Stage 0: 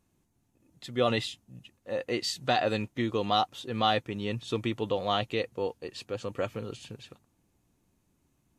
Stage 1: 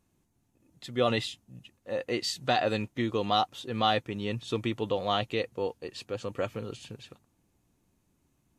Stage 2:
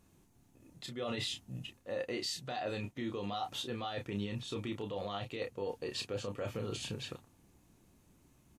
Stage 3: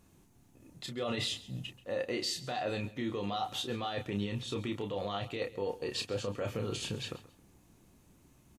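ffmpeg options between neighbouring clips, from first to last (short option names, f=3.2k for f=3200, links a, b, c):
-af anull
-filter_complex "[0:a]areverse,acompressor=threshold=-36dB:ratio=8,areverse,alimiter=level_in=10.5dB:limit=-24dB:level=0:latency=1:release=25,volume=-10.5dB,asplit=2[a][b];[b]adelay=30,volume=-6dB[c];[a][c]amix=inputs=2:normalize=0,volume=5dB"
-af "aecho=1:1:134|268:0.126|0.0327,volume=3dB"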